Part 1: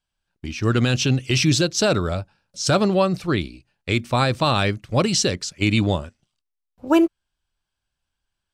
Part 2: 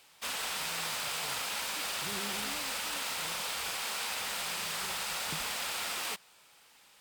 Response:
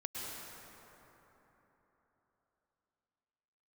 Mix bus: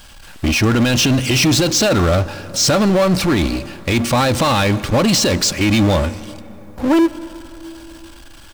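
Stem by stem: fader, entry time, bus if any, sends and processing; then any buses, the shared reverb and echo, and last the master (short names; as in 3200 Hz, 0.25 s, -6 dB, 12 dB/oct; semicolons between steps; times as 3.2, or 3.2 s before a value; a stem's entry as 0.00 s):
+2.5 dB, 0.00 s, send -19.5 dB, de-esser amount 50%; comb 3.6 ms, depth 36%; power-law curve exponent 0.5
-8.0 dB, 0.00 s, no send, auto duck -14 dB, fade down 1.75 s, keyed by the first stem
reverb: on, RT60 3.9 s, pre-delay 98 ms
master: limiter -8.5 dBFS, peak gain reduction 5.5 dB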